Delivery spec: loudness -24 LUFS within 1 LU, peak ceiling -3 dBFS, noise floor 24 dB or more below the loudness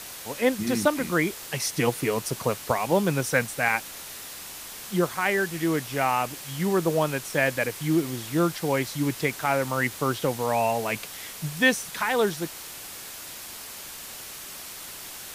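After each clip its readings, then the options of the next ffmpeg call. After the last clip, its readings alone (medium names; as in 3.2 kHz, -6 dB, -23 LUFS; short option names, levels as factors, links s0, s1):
noise floor -40 dBFS; noise floor target -50 dBFS; loudness -26.0 LUFS; peak level -7.5 dBFS; loudness target -24.0 LUFS
-> -af "afftdn=nr=10:nf=-40"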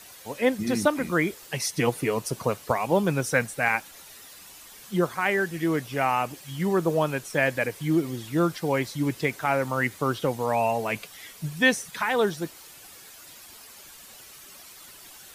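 noise floor -48 dBFS; noise floor target -50 dBFS
-> -af "afftdn=nr=6:nf=-48"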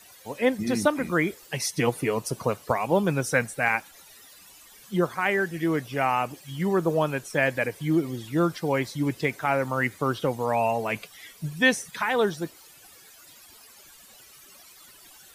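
noise floor -52 dBFS; loudness -26.0 LUFS; peak level -8.0 dBFS; loudness target -24.0 LUFS
-> -af "volume=1.26"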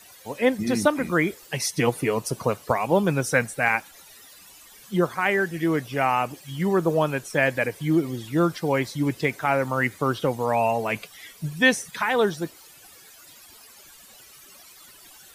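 loudness -24.0 LUFS; peak level -6.0 dBFS; noise floor -50 dBFS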